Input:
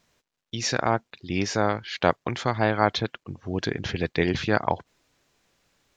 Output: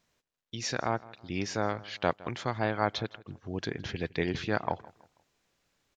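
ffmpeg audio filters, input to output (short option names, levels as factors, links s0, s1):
-filter_complex "[0:a]asplit=2[s0][s1];[s1]adelay=162,lowpass=f=4100:p=1,volume=0.0944,asplit=2[s2][s3];[s3]adelay=162,lowpass=f=4100:p=1,volume=0.35,asplit=2[s4][s5];[s5]adelay=162,lowpass=f=4100:p=1,volume=0.35[s6];[s0][s2][s4][s6]amix=inputs=4:normalize=0,volume=0.447"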